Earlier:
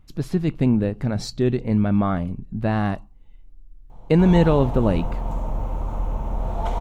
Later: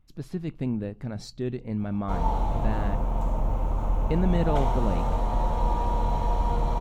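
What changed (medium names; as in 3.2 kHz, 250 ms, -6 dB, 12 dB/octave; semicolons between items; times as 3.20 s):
speech -10.0 dB; background: entry -2.10 s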